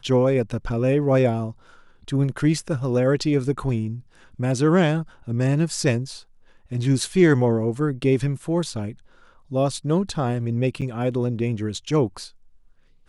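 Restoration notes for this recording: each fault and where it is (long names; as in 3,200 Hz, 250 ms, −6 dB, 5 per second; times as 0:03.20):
0:10.81–0:10.82: drop-out 7.7 ms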